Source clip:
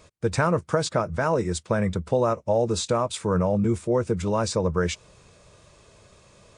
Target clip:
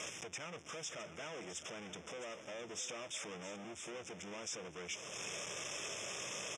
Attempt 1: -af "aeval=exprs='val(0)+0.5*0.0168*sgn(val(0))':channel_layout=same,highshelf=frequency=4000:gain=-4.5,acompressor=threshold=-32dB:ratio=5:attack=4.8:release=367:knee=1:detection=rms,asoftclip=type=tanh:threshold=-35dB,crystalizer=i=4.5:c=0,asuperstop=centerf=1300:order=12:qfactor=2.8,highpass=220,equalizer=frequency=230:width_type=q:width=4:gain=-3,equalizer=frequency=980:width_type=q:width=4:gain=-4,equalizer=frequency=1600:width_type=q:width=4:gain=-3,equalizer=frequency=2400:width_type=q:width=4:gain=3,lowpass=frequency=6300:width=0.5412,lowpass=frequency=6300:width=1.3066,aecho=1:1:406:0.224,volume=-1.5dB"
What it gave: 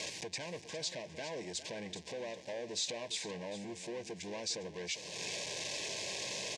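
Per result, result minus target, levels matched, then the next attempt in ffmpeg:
echo 255 ms early; soft clipping: distortion −5 dB; 1,000 Hz band −3.5 dB
-af "aeval=exprs='val(0)+0.5*0.0168*sgn(val(0))':channel_layout=same,highshelf=frequency=4000:gain=-4.5,acompressor=threshold=-32dB:ratio=5:attack=4.8:release=367:knee=1:detection=rms,asoftclip=type=tanh:threshold=-35dB,crystalizer=i=4.5:c=0,asuperstop=centerf=1300:order=12:qfactor=2.8,highpass=220,equalizer=frequency=230:width_type=q:width=4:gain=-3,equalizer=frequency=980:width_type=q:width=4:gain=-4,equalizer=frequency=1600:width_type=q:width=4:gain=-3,equalizer=frequency=2400:width_type=q:width=4:gain=3,lowpass=frequency=6300:width=0.5412,lowpass=frequency=6300:width=1.3066,aecho=1:1:661:0.224,volume=-1.5dB"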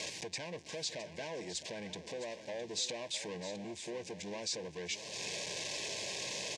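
soft clipping: distortion −5 dB; 1,000 Hz band −3.5 dB
-af "aeval=exprs='val(0)+0.5*0.0168*sgn(val(0))':channel_layout=same,highshelf=frequency=4000:gain=-4.5,acompressor=threshold=-32dB:ratio=5:attack=4.8:release=367:knee=1:detection=rms,asoftclip=type=tanh:threshold=-43dB,crystalizer=i=4.5:c=0,asuperstop=centerf=1300:order=12:qfactor=2.8,highpass=220,equalizer=frequency=230:width_type=q:width=4:gain=-3,equalizer=frequency=980:width_type=q:width=4:gain=-4,equalizer=frequency=1600:width_type=q:width=4:gain=-3,equalizer=frequency=2400:width_type=q:width=4:gain=3,lowpass=frequency=6300:width=0.5412,lowpass=frequency=6300:width=1.3066,aecho=1:1:661:0.224,volume=-1.5dB"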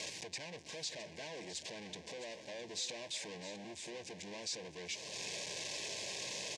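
1,000 Hz band −4.0 dB
-af "aeval=exprs='val(0)+0.5*0.0168*sgn(val(0))':channel_layout=same,highshelf=frequency=4000:gain=-4.5,acompressor=threshold=-32dB:ratio=5:attack=4.8:release=367:knee=1:detection=rms,asoftclip=type=tanh:threshold=-43dB,crystalizer=i=4.5:c=0,asuperstop=centerf=4300:order=12:qfactor=2.8,highpass=220,equalizer=frequency=230:width_type=q:width=4:gain=-3,equalizer=frequency=980:width_type=q:width=4:gain=-4,equalizer=frequency=1600:width_type=q:width=4:gain=-3,equalizer=frequency=2400:width_type=q:width=4:gain=3,lowpass=frequency=6300:width=0.5412,lowpass=frequency=6300:width=1.3066,aecho=1:1:661:0.224,volume=-1.5dB"

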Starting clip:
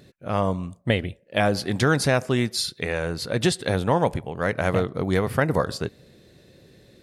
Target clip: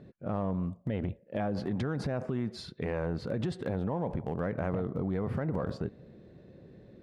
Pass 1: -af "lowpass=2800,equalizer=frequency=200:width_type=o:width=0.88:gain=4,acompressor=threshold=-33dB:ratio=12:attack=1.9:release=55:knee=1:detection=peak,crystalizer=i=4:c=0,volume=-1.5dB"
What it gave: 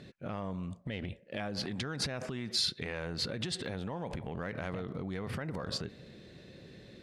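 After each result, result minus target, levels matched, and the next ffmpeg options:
downward compressor: peak gain reduction +7 dB; 2,000 Hz band +5.5 dB
-af "lowpass=2800,equalizer=frequency=200:width_type=o:width=0.88:gain=4,acompressor=threshold=-26dB:ratio=12:attack=1.9:release=55:knee=1:detection=peak,crystalizer=i=4:c=0,volume=-1.5dB"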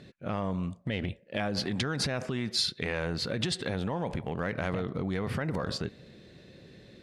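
2,000 Hz band +7.0 dB
-af "lowpass=1000,equalizer=frequency=200:width_type=o:width=0.88:gain=4,acompressor=threshold=-26dB:ratio=12:attack=1.9:release=55:knee=1:detection=peak,crystalizer=i=4:c=0,volume=-1.5dB"

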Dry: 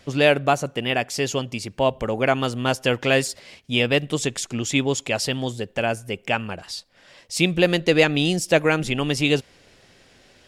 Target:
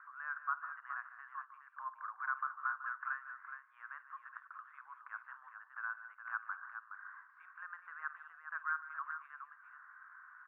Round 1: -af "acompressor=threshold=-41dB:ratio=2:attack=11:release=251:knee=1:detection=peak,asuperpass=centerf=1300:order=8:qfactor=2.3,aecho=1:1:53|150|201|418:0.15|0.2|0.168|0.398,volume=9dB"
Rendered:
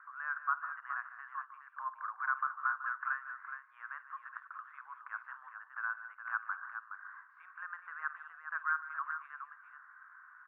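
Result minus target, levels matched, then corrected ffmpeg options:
downward compressor: peak gain reduction −4 dB
-af "acompressor=threshold=-49dB:ratio=2:attack=11:release=251:knee=1:detection=peak,asuperpass=centerf=1300:order=8:qfactor=2.3,aecho=1:1:53|150|201|418:0.15|0.2|0.168|0.398,volume=9dB"

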